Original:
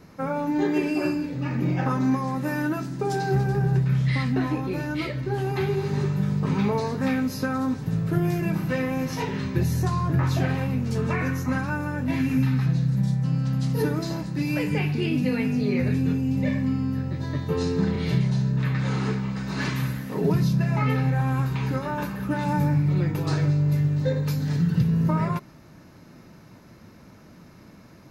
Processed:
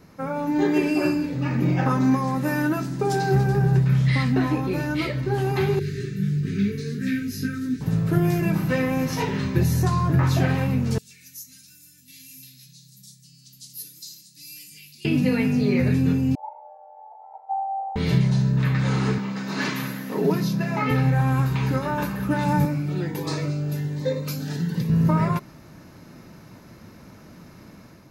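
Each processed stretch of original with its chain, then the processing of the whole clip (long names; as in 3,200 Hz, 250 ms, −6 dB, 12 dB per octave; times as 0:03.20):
0:05.79–0:07.81: Chebyshev band-stop filter 400–1,600 Hz, order 3 + micro pitch shift up and down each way 21 cents
0:10.98–0:15.05: Chebyshev band-stop filter 170–4,300 Hz + first difference
0:16.35–0:17.96: flat-topped band-pass 470 Hz, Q 3.9 + frequency shifter +340 Hz
0:19.18–0:20.91: high-pass filter 180 Hz 24 dB per octave + parametric band 8,600 Hz −7.5 dB 0.24 octaves
0:22.65–0:24.90: high-pass filter 230 Hz + phaser whose notches keep moving one way rising 1.3 Hz
whole clip: high-shelf EQ 8,500 Hz +4 dB; automatic gain control gain up to 4.5 dB; level −1.5 dB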